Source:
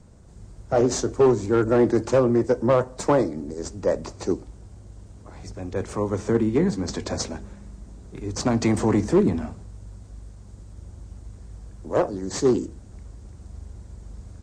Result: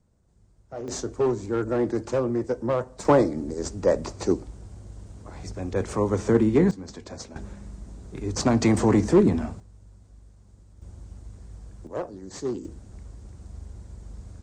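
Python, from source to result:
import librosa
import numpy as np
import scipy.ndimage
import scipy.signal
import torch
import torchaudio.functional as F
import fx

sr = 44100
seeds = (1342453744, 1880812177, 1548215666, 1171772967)

y = fx.gain(x, sr, db=fx.steps((0.0, -16.0), (0.88, -6.0), (3.05, 1.5), (6.71, -11.0), (7.36, 1.0), (9.6, -9.5), (10.82, -2.0), (11.87, -10.0), (12.65, -1.0)))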